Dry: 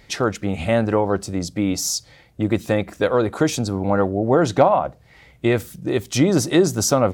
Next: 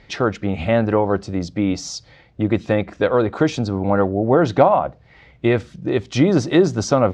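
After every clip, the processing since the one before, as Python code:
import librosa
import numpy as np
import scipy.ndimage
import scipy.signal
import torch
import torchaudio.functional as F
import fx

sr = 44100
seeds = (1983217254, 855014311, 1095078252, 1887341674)

y = scipy.signal.sosfilt(scipy.signal.bessel(4, 3800.0, 'lowpass', norm='mag', fs=sr, output='sos'), x)
y = y * 10.0 ** (1.5 / 20.0)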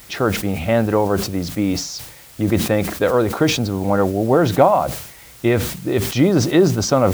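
y = fx.dmg_noise_colour(x, sr, seeds[0], colour='white', level_db=-44.0)
y = fx.sustainer(y, sr, db_per_s=75.0)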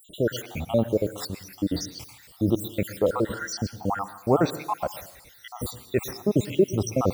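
y = fx.spec_dropout(x, sr, seeds[1], share_pct=72)
y = fx.rev_plate(y, sr, seeds[2], rt60_s=0.6, hf_ratio=0.95, predelay_ms=100, drr_db=13.5)
y = y * 10.0 ** (-4.0 / 20.0)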